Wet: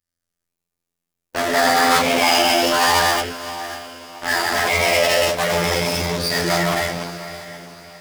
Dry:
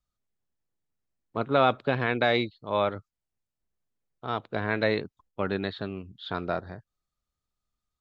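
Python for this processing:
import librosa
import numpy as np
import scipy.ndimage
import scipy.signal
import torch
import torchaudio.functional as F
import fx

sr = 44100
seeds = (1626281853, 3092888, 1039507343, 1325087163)

p1 = fx.rev_gated(x, sr, seeds[0], gate_ms=350, shape='flat', drr_db=-6.5)
p2 = fx.robotise(p1, sr, hz=86.0)
p3 = fx.fuzz(p2, sr, gain_db=42.0, gate_db=-46.0)
p4 = p2 + (p3 * 10.0 ** (-6.0 / 20.0))
p5 = fx.low_shelf(p4, sr, hz=160.0, db=-6.0)
p6 = p5 + fx.echo_diffused(p5, sr, ms=585, feedback_pct=42, wet_db=-13.0, dry=0)
p7 = fx.formant_shift(p6, sr, semitones=5)
p8 = fx.high_shelf(p7, sr, hz=3600.0, db=6.5)
y = p8 * 10.0 ** (-1.5 / 20.0)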